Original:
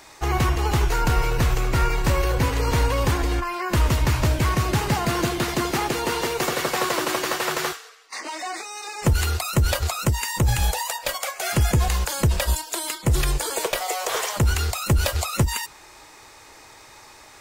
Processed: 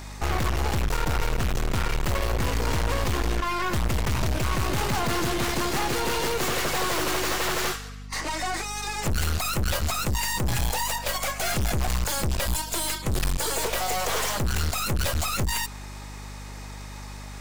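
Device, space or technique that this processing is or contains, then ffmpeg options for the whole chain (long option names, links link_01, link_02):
valve amplifier with mains hum: -af "aeval=exprs='(tanh(35.5*val(0)+0.8)-tanh(0.8))/35.5':channel_layout=same,aeval=exprs='val(0)+0.00562*(sin(2*PI*50*n/s)+sin(2*PI*2*50*n/s)/2+sin(2*PI*3*50*n/s)/3+sin(2*PI*4*50*n/s)/4+sin(2*PI*5*50*n/s)/5)':channel_layout=same,volume=7dB"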